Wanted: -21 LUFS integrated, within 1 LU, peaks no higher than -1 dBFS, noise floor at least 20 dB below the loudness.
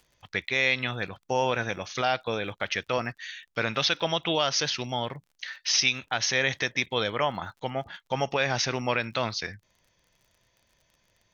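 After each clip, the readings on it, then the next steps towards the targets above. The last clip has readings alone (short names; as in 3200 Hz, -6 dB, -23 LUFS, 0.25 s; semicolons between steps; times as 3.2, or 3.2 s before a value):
ticks 48/s; loudness -27.5 LUFS; peak -9.5 dBFS; loudness target -21.0 LUFS
-> de-click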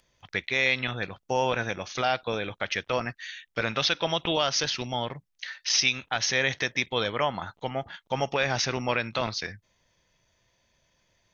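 ticks 0.26/s; loudness -27.5 LUFS; peak -9.5 dBFS; loudness target -21.0 LUFS
-> gain +6.5 dB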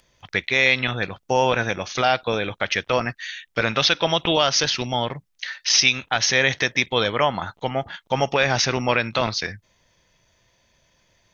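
loudness -21.0 LUFS; peak -3.0 dBFS; noise floor -66 dBFS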